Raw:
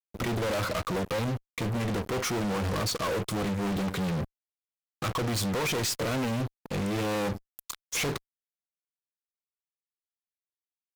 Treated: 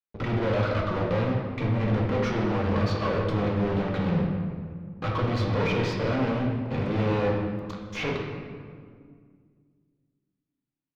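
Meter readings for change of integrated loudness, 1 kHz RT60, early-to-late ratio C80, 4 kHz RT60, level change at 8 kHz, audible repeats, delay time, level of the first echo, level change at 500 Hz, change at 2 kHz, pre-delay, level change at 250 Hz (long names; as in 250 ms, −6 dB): +3.0 dB, 1.8 s, 4.0 dB, 1.2 s, below −15 dB, no echo audible, no echo audible, no echo audible, +4.5 dB, +1.0 dB, 4 ms, +4.0 dB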